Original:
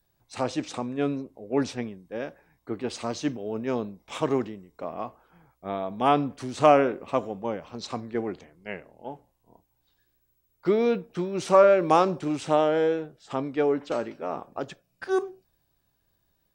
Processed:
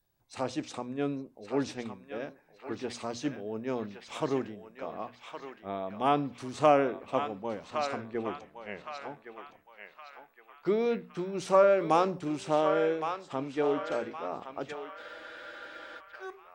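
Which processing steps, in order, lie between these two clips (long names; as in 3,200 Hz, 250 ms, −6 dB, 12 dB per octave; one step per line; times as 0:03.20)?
mains-hum notches 60/120/180/240 Hz
feedback echo with a band-pass in the loop 1,115 ms, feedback 52%, band-pass 1,900 Hz, level −4.5 dB
frozen spectrum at 0:15.00, 0.99 s
level −5 dB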